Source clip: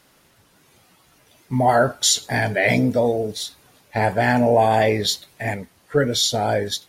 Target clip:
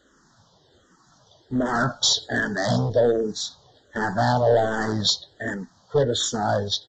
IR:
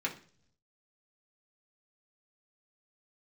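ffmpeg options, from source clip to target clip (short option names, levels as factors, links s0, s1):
-filter_complex "[0:a]aresample=16000,asoftclip=type=hard:threshold=0.178,aresample=44100,asuperstop=centerf=2400:order=8:qfactor=1.8,asplit=2[s0][s1];[s1]afreqshift=-1.3[s2];[s0][s2]amix=inputs=2:normalize=1,volume=1.33"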